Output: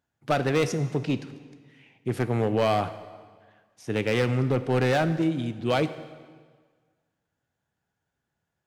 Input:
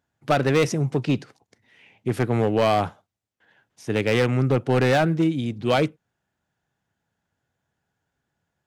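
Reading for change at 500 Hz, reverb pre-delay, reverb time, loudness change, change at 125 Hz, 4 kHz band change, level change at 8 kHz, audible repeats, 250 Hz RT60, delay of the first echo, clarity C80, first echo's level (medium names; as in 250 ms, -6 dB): -3.5 dB, 12 ms, 1.6 s, -3.5 dB, -3.5 dB, -3.5 dB, -3.5 dB, no echo, 1.5 s, no echo, 14.0 dB, no echo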